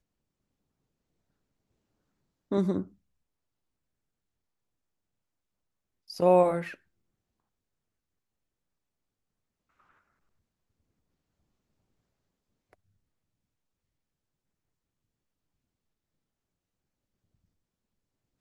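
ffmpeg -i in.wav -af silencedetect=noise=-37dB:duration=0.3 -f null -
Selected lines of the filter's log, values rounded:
silence_start: 0.00
silence_end: 2.52 | silence_duration: 2.52
silence_start: 2.83
silence_end: 6.10 | silence_duration: 3.27
silence_start: 6.74
silence_end: 18.40 | silence_duration: 11.66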